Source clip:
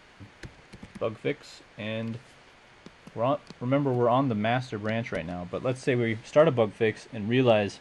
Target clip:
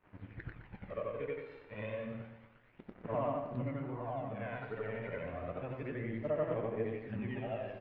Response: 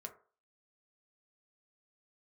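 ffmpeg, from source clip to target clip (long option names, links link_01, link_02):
-af "afftfilt=real='re':imag='-im':win_size=8192:overlap=0.75,acompressor=threshold=-38dB:ratio=12,aeval=exprs='sgn(val(0))*max(abs(val(0))-0.00133,0)':channel_layout=same,aphaser=in_gain=1:out_gain=1:delay=2.2:decay=0.5:speed=0.3:type=sinusoidal,lowpass=frequency=2400:width=0.5412,lowpass=frequency=2400:width=1.3066,flanger=delay=6.4:depth=5.7:regen=-57:speed=1.4:shape=triangular,aecho=1:1:119|238|357|476|595:0.355|0.163|0.0751|0.0345|0.0159,volume=5.5dB"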